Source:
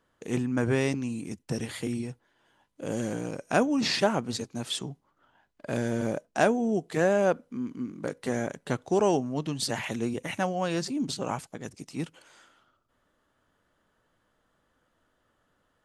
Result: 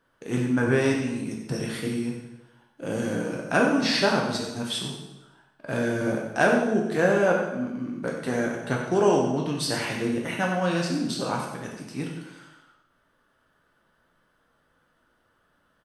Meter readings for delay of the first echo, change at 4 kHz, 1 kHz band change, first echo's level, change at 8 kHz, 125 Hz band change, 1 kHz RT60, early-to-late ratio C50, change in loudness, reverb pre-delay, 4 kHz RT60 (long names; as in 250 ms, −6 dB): 93 ms, +3.5 dB, +3.5 dB, −9.0 dB, +1.5 dB, +3.0 dB, 1.0 s, 3.0 dB, +3.5 dB, 4 ms, 0.90 s